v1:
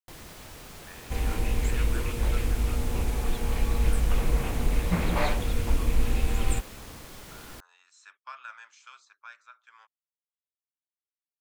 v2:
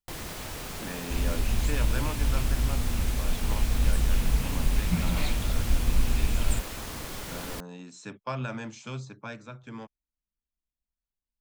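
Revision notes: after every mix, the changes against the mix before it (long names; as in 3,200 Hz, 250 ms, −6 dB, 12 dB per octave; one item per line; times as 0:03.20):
speech: remove four-pole ladder high-pass 1,100 Hz, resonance 50%
first sound +7.5 dB
second sound: add flat-topped bell 800 Hz −13.5 dB 2.7 octaves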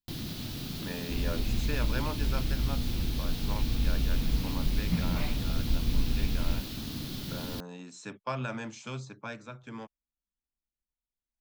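first sound: add octave-band graphic EQ 125/250/500/1,000/2,000/4,000/8,000 Hz +8/+9/−9/−9/−8/+8/−11 dB
second sound: add high-frequency loss of the air 390 metres
master: add low-shelf EQ 140 Hz −4.5 dB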